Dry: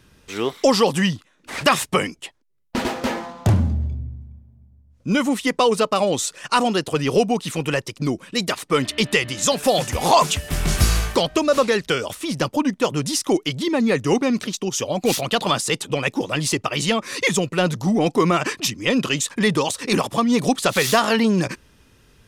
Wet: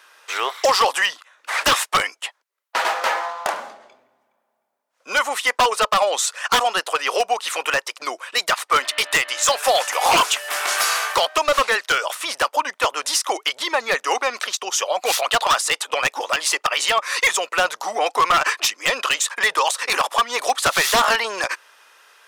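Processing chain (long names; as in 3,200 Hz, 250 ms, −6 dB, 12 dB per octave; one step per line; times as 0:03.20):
high-pass filter 590 Hz 24 dB per octave
parametric band 1,300 Hz +7 dB 1.5 octaves
in parallel at −2 dB: downward compressor 10 to 1, threshold −26 dBFS, peak gain reduction 19 dB
on the sum: wave folding −9.5 dBFS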